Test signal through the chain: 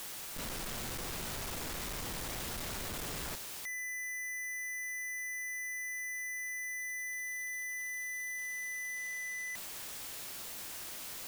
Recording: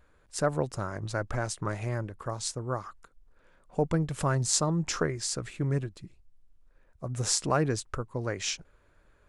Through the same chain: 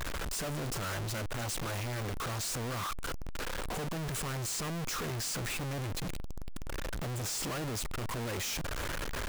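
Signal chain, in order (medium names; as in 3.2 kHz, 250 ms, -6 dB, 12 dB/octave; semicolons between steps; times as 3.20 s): one-bit comparator; trim -3.5 dB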